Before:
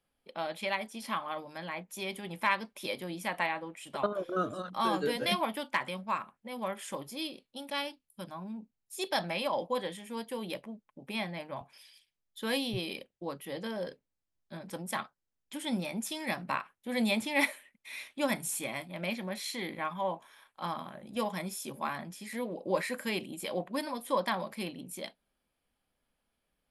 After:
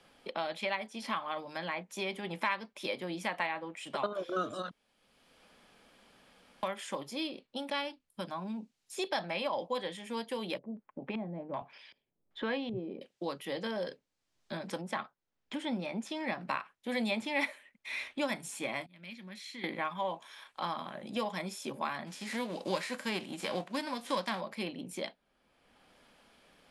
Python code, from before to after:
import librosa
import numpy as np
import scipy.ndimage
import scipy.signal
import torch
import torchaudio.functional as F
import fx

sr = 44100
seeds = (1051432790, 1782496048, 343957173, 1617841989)

y = fx.filter_lfo_lowpass(x, sr, shape='square', hz=1.3, low_hz=430.0, high_hz=1800.0, q=0.78, at=(10.57, 13.01), fade=0.02)
y = fx.lowpass(y, sr, hz=1800.0, slope=6, at=(14.81, 16.41))
y = fx.tone_stack(y, sr, knobs='6-0-2', at=(18.86, 19.64))
y = fx.envelope_flatten(y, sr, power=0.6, at=(22.06, 24.39), fade=0.02)
y = fx.edit(y, sr, fx.room_tone_fill(start_s=4.71, length_s=1.92), tone=tone)
y = scipy.signal.sosfilt(scipy.signal.butter(2, 6800.0, 'lowpass', fs=sr, output='sos'), y)
y = fx.low_shelf(y, sr, hz=140.0, db=-9.5)
y = fx.band_squash(y, sr, depth_pct=70)